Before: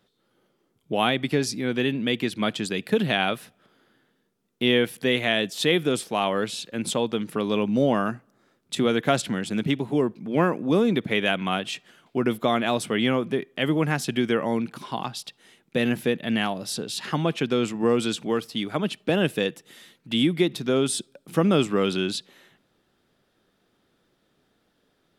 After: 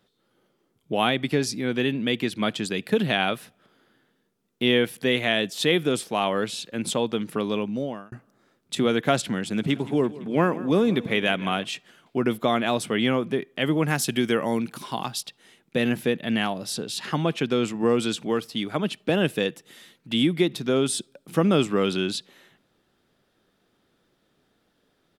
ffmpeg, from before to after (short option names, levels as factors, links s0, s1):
-filter_complex "[0:a]asplit=3[s0][s1][s2];[s0]afade=t=out:st=9.63:d=0.02[s3];[s1]aecho=1:1:169|338|507|676|845:0.126|0.0743|0.0438|0.0259|0.0153,afade=t=in:st=9.63:d=0.02,afade=t=out:st=11.63:d=0.02[s4];[s2]afade=t=in:st=11.63:d=0.02[s5];[s3][s4][s5]amix=inputs=3:normalize=0,asettb=1/sr,asplit=3[s6][s7][s8];[s6]atrim=end=13.884[s9];[s7]atrim=start=13.88:end=15.21,asetpts=PTS-STARTPTS,afade=t=in:d=0.004:c=qsin,afade=t=out:st=1.326:d=0.004:c=qsin,highshelf=f=6300:g=11[s10];[s8]atrim=start=15.206[s11];[s9][s10]acrossfade=d=0.004:c1=hsin:c2=qsin[s12];[s12][s11]acrossfade=d=0.004:c1=qsin:c2=hsin,asplit=2[s13][s14];[s13]atrim=end=8.12,asetpts=PTS-STARTPTS,afade=t=out:st=7.38:d=0.74[s15];[s14]atrim=start=8.12,asetpts=PTS-STARTPTS,afade=t=in:d=0.004:c=hsin[s16];[s15][s16]concat=n=2:v=0:a=1"